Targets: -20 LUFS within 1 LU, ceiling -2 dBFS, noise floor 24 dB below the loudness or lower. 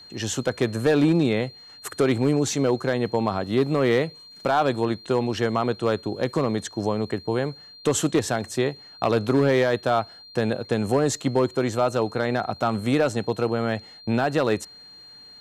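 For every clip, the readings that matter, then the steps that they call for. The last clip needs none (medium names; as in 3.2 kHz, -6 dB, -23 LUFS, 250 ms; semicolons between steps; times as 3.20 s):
clipped samples 0.6%; clipping level -12.5 dBFS; steady tone 4.2 kHz; tone level -44 dBFS; loudness -24.0 LUFS; peak level -12.5 dBFS; loudness target -20.0 LUFS
-> clip repair -12.5 dBFS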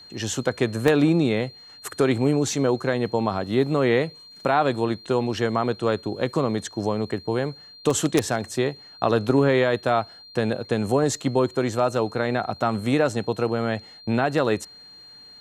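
clipped samples 0.0%; steady tone 4.2 kHz; tone level -44 dBFS
-> band-stop 4.2 kHz, Q 30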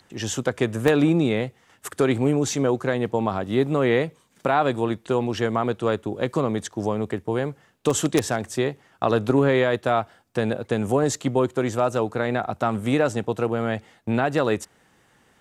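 steady tone not found; loudness -23.5 LUFS; peak level -3.5 dBFS; loudness target -20.0 LUFS
-> trim +3.5 dB; peak limiter -2 dBFS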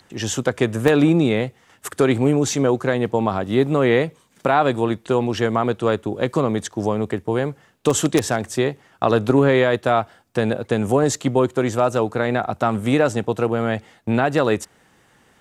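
loudness -20.0 LUFS; peak level -2.0 dBFS; noise floor -57 dBFS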